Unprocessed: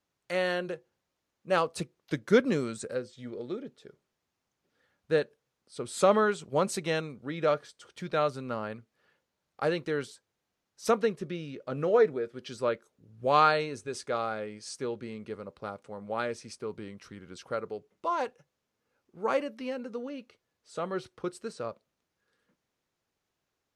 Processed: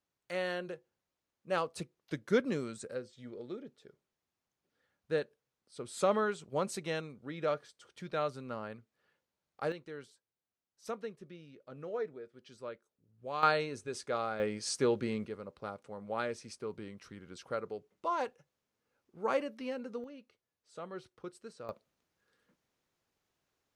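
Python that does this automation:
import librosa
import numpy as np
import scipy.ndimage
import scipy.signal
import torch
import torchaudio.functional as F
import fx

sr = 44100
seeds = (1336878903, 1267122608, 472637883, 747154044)

y = fx.gain(x, sr, db=fx.steps((0.0, -6.5), (9.72, -14.5), (13.43, -3.5), (14.4, 5.0), (15.26, -3.5), (20.04, -10.5), (21.69, 0.0)))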